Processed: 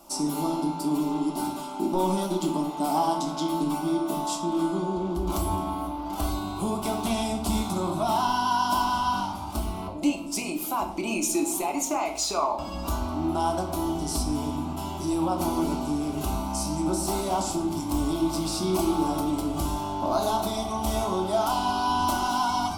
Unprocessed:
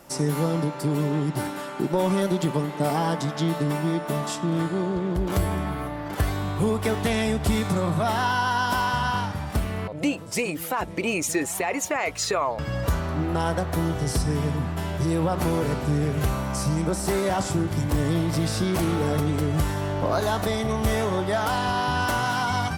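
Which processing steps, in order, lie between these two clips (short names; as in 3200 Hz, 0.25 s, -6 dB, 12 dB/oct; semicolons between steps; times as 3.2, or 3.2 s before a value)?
bell 110 Hz -7.5 dB 1.2 oct; fixed phaser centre 480 Hz, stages 6; reverb RT60 0.70 s, pre-delay 6 ms, DRR 3 dB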